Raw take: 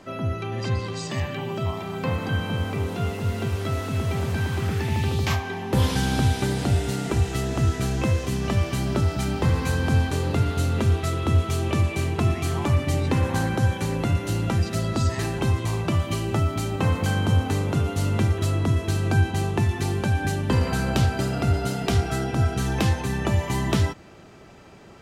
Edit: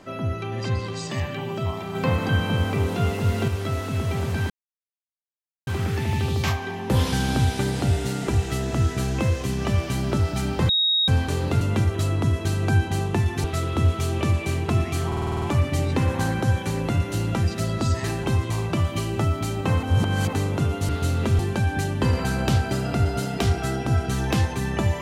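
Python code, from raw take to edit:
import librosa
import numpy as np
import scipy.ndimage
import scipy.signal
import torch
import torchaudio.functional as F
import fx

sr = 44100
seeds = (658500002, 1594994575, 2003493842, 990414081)

y = fx.edit(x, sr, fx.clip_gain(start_s=1.95, length_s=1.53, db=3.5),
    fx.insert_silence(at_s=4.5, length_s=1.17),
    fx.bleep(start_s=9.52, length_s=0.39, hz=3770.0, db=-17.5),
    fx.swap(start_s=10.44, length_s=0.5, other_s=18.04, other_length_s=1.83),
    fx.stutter(start_s=12.57, slice_s=0.05, count=8),
    fx.reverse_span(start_s=16.98, length_s=0.5), tone=tone)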